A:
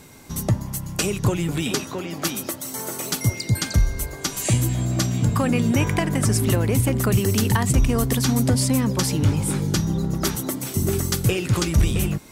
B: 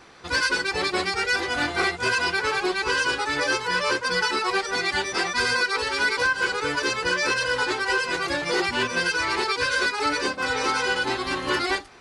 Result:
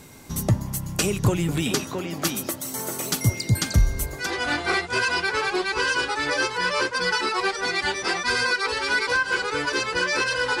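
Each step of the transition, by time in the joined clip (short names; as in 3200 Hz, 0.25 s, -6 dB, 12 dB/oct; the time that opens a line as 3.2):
A
4.24 switch to B from 1.34 s, crossfade 0.12 s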